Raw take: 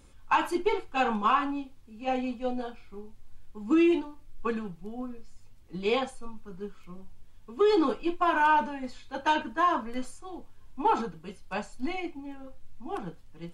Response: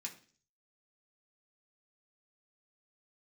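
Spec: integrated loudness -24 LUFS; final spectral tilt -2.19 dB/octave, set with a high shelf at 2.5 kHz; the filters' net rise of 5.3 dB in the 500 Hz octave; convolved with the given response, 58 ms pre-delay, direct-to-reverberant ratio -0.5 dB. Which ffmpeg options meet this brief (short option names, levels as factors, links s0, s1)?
-filter_complex "[0:a]equalizer=f=500:t=o:g=6.5,highshelf=f=2500:g=8.5,asplit=2[s0][s1];[1:a]atrim=start_sample=2205,adelay=58[s2];[s1][s2]afir=irnorm=-1:irlink=0,volume=1.41[s3];[s0][s3]amix=inputs=2:normalize=0,volume=0.891"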